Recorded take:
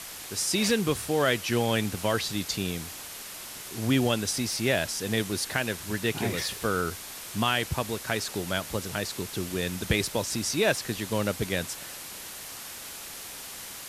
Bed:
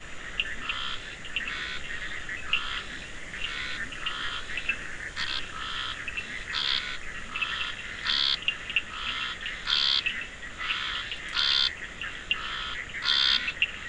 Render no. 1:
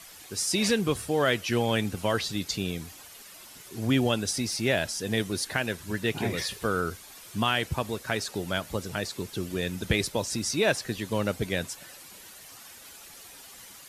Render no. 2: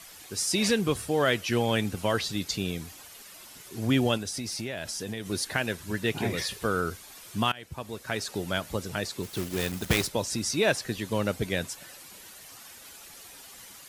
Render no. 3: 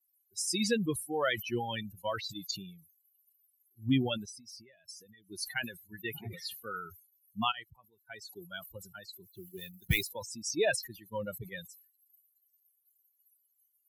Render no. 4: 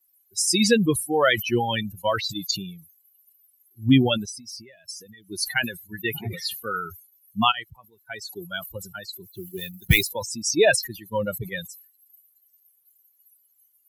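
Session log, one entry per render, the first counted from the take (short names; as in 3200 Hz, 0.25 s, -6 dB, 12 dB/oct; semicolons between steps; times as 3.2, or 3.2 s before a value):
denoiser 10 dB, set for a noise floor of -41 dBFS
4.17–5.3 compressor, threshold -30 dBFS; 7.52–8.33 fade in, from -22 dB; 9.23–10.07 block floating point 3-bit
per-bin expansion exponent 3; sustainer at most 110 dB/s
gain +11 dB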